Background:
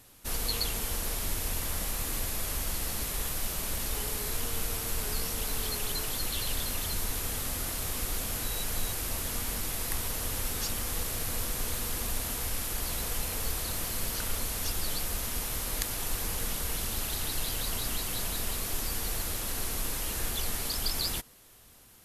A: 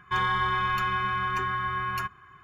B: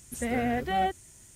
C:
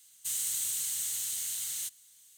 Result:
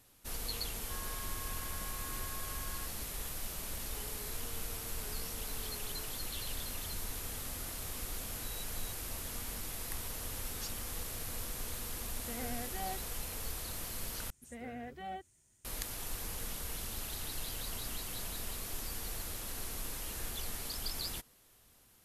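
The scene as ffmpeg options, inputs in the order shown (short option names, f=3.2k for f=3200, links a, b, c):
-filter_complex "[2:a]asplit=2[a][b];[0:a]volume=-8dB[c];[1:a]alimiter=limit=-24dB:level=0:latency=1:release=71[d];[c]asplit=2[e][f];[e]atrim=end=14.304[g];[b]atrim=end=1.35,asetpts=PTS-STARTPTS,volume=-16.5dB[h];[f]atrim=start=15.646[i];[d]atrim=end=2.43,asetpts=PTS-STARTPTS,volume=-18dB,afade=t=in:d=0.004:c=hsin,afade=t=out:st=2.426:d=0.004:c=hsin,adelay=790[j];[a]atrim=end=1.35,asetpts=PTS-STARTPTS,volume=-15dB,afade=t=in:d=0.004:c=hsin,afade=t=out:st=1.346:d=0.004:c=hsin,adelay=12060[k];[g][h]acrossfade=d=0.004:c1=hsin:c2=hsin[l];[l][i]acrossfade=d=0.004:c1=hsin:c2=hsin[m];[m][j][k]amix=inputs=3:normalize=0"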